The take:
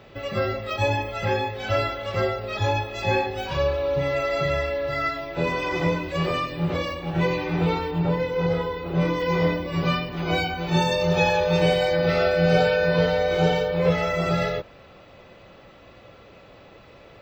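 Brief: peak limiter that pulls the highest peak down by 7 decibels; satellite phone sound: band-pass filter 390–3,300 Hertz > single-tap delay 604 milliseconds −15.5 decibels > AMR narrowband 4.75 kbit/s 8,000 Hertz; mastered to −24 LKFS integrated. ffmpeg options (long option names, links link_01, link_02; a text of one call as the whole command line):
ffmpeg -i in.wav -af "alimiter=limit=-13dB:level=0:latency=1,highpass=390,lowpass=3300,aecho=1:1:604:0.168,volume=5dB" -ar 8000 -c:a libopencore_amrnb -b:a 4750 out.amr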